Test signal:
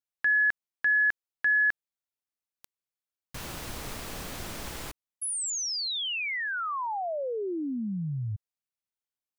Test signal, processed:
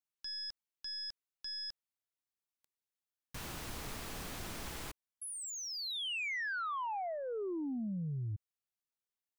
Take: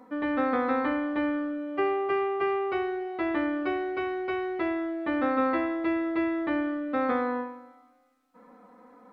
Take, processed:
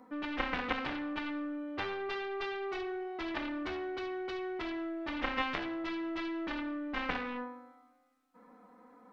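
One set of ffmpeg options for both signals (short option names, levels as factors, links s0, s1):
-filter_complex "[0:a]aeval=exprs='0.178*(cos(1*acos(clip(val(0)/0.178,-1,1)))-cos(1*PI/2))+0.0112*(cos(2*acos(clip(val(0)/0.178,-1,1)))-cos(2*PI/2))+0.0891*(cos(3*acos(clip(val(0)/0.178,-1,1)))-cos(3*PI/2))+0.00224*(cos(4*acos(clip(val(0)/0.178,-1,1)))-cos(4*PI/2))+0.00251*(cos(7*acos(clip(val(0)/0.178,-1,1)))-cos(7*PI/2))':c=same,acrossover=split=3100[s0][s1];[s1]acompressor=threshold=0.00794:ratio=4:attack=1:release=60[s2];[s0][s2]amix=inputs=2:normalize=0,equalizer=f=560:t=o:w=0.36:g=-3"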